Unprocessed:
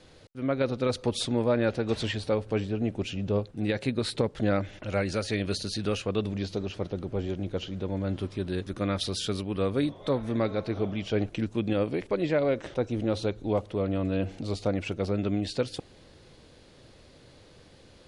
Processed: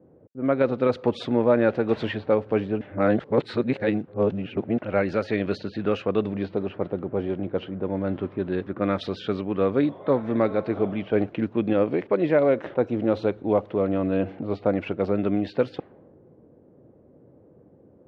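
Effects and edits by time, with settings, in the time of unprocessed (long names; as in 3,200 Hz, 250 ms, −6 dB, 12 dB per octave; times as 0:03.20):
0:02.81–0:04.78: reverse
whole clip: Bessel high-pass filter 190 Hz, order 2; low-pass that shuts in the quiet parts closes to 380 Hz, open at −25.5 dBFS; low-pass filter 1,900 Hz 12 dB per octave; level +6.5 dB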